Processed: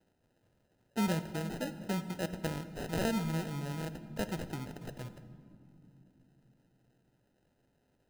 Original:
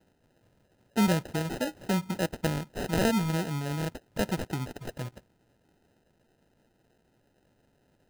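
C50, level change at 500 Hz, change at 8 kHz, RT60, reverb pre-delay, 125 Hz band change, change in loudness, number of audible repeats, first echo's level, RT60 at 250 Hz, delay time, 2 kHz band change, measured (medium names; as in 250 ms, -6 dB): 12.5 dB, -6.5 dB, -7.0 dB, 2.9 s, 17 ms, -6.0 dB, -6.5 dB, no echo, no echo, 4.6 s, no echo, -6.5 dB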